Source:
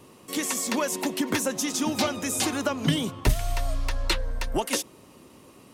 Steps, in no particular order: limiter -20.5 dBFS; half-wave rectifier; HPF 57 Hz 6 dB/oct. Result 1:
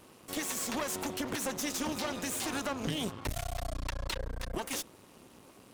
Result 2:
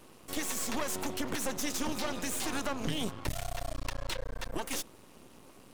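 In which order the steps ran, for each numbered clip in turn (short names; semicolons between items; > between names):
limiter > half-wave rectifier > HPF; limiter > HPF > half-wave rectifier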